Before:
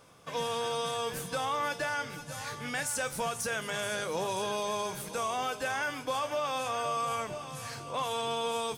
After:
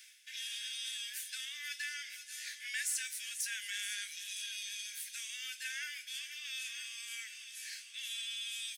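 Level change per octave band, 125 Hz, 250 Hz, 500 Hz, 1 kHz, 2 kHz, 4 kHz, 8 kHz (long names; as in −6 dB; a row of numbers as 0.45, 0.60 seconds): below −40 dB, below −40 dB, below −40 dB, −34.0 dB, −5.5 dB, −1.0 dB, −1.0 dB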